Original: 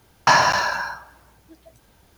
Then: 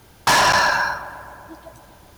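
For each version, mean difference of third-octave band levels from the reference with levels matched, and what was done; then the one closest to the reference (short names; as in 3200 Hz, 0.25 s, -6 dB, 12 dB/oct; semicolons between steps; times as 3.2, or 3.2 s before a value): 5.5 dB: in parallel at -11 dB: sine folder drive 14 dB, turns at -3 dBFS; on the sum: darkening echo 0.127 s, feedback 82%, low-pass 2300 Hz, level -16.5 dB; gain -3 dB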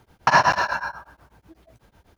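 3.5 dB: high shelf 3800 Hz -11 dB; beating tremolo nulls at 8.1 Hz; gain +3.5 dB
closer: second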